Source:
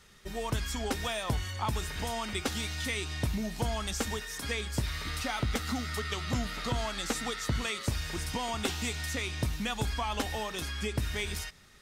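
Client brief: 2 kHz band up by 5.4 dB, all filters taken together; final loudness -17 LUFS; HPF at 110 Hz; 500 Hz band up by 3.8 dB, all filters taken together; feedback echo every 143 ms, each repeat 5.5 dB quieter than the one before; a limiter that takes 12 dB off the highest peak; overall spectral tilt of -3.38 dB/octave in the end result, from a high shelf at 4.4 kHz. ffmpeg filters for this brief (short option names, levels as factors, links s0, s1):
-af "highpass=110,equalizer=f=500:t=o:g=4.5,equalizer=f=2000:t=o:g=7,highshelf=f=4400:g=-4,alimiter=level_in=1.26:limit=0.0631:level=0:latency=1,volume=0.794,aecho=1:1:143|286|429|572|715|858|1001:0.531|0.281|0.149|0.079|0.0419|0.0222|0.0118,volume=6.68"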